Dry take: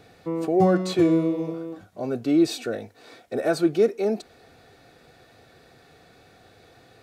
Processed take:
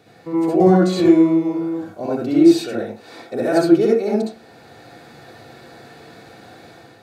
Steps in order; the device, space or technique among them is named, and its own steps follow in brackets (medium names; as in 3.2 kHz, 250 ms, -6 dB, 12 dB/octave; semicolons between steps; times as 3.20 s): far laptop microphone (reverberation RT60 0.30 s, pre-delay 60 ms, DRR -5 dB; high-pass 110 Hz; level rider gain up to 6.5 dB); trim -1 dB